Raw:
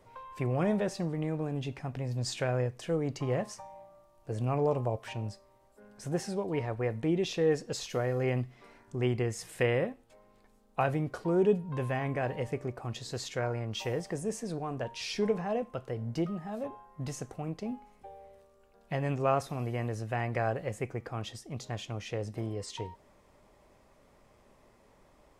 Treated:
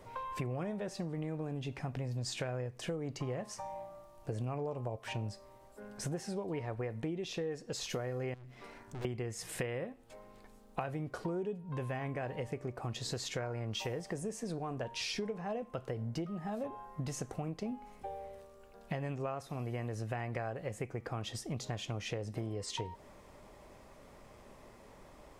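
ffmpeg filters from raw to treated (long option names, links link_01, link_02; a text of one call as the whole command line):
ffmpeg -i in.wav -filter_complex "[0:a]asettb=1/sr,asplit=3[link_01][link_02][link_03];[link_01]atrim=end=8.344[link_04];[link_02]atrim=start=8.34:end=9.05,asetpts=PTS-STARTPTS,afade=type=in:duration=0.004:curve=qsin,afade=type=out:start_time=0.706:duration=0.004:curve=qsin,aeval=exprs='(tanh(224*val(0)+0.4)-tanh(0.4))/224':channel_layout=same[link_05];[link_03]atrim=start=9.046[link_06];[link_04][link_05]acrossfade=duration=0.004:curve1=hsin:curve2=qsin[link_07];[link_07][link_06]acrossfade=duration=0.004:curve1=qsin:curve2=hsin,acompressor=threshold=-41dB:ratio=10,volume=6dB" out.wav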